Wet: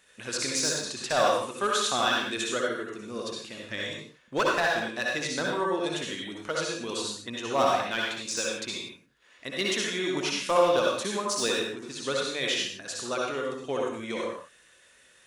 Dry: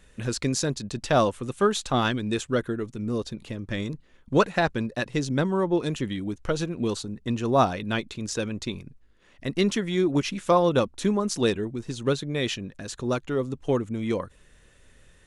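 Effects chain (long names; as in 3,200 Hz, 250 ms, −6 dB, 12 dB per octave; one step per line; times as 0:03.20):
high-pass filter 1,000 Hz 6 dB per octave
gain into a clipping stage and back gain 19.5 dB
convolution reverb, pre-delay 57 ms, DRR −2.5 dB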